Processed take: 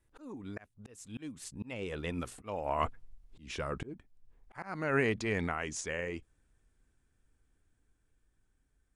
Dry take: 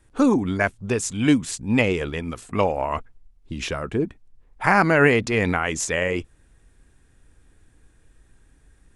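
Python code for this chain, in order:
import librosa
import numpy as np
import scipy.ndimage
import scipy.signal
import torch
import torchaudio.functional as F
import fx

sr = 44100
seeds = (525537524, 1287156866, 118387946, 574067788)

y = fx.doppler_pass(x, sr, speed_mps=16, closest_m=11.0, pass_at_s=3.21)
y = fx.auto_swell(y, sr, attack_ms=493.0)
y = y * librosa.db_to_amplitude(-1.5)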